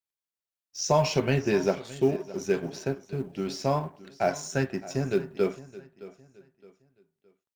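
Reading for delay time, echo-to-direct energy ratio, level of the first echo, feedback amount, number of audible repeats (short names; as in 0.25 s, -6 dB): 0.616 s, -17.5 dB, -18.0 dB, 33%, 2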